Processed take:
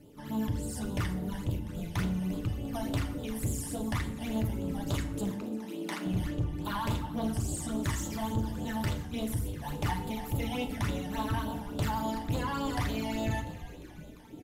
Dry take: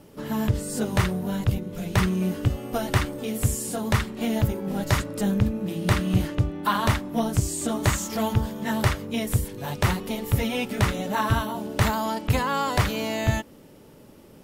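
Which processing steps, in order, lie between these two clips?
0:09.73–0:10.68: parametric band 820 Hz +12 dB 0.23 octaves
echo with shifted repeats 348 ms, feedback 64%, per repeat −140 Hz, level −16.5 dB
all-pass phaser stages 12, 3.5 Hz, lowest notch 400–2,000 Hz
soft clipping −20 dBFS, distortion −10 dB
0:05.31–0:06.06: Butterworth high-pass 220 Hz 36 dB per octave
feedback delay network reverb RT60 0.72 s, low-frequency decay 1.45×, high-frequency decay 0.7×, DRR 5.5 dB
level −6 dB

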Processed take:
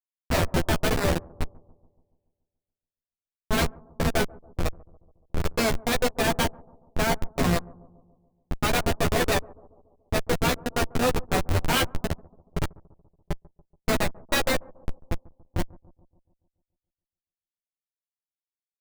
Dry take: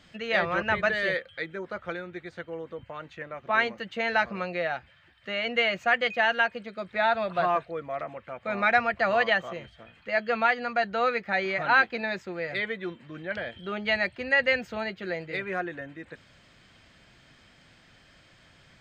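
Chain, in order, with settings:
phase distortion by the signal itself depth 0.23 ms
low-shelf EQ 340 Hz −8.5 dB
in parallel at −12 dB: decimation without filtering 40×
on the sum: comparator with hysteresis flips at −22.5 dBFS
double-tracking delay 12 ms −3.5 dB
on a send: bucket-brigade delay 142 ms, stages 1,024, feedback 56%, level −23 dB
on the sum: one half of a high-frequency compander decoder only
level +8.5 dB

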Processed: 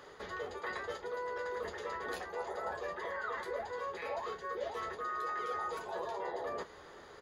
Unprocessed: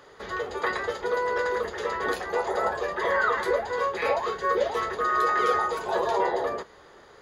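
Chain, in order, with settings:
reversed playback
downward compressor 4 to 1, threshold −37 dBFS, peak gain reduction 15 dB
reversed playback
double-tracking delay 12 ms −12.5 dB
level −2 dB

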